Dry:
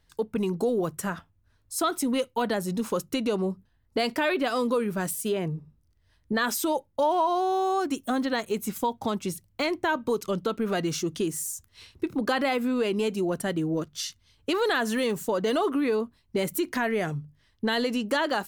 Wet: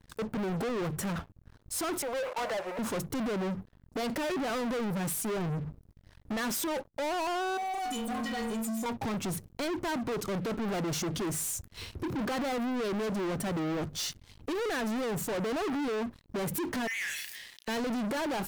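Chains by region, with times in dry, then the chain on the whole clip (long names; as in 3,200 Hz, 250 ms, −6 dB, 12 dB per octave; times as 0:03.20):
0:02.02–0:02.79: converter with a step at zero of −34 dBFS + downward expander −37 dBFS + Chebyshev band-pass filter 550–2,500 Hz, order 3
0:07.57–0:08.86: parametric band 7,200 Hz +11 dB 2.5 octaves + stiff-string resonator 220 Hz, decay 0.59 s, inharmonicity 0.03 + envelope flattener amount 70%
0:16.87–0:17.68: Butterworth high-pass 1,700 Hz 96 dB per octave + double-tracking delay 34 ms −8 dB + level that may fall only so fast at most 40 dB per second
whole clip: tilt shelving filter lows +5 dB; brickwall limiter −21.5 dBFS; leveller curve on the samples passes 5; level −8.5 dB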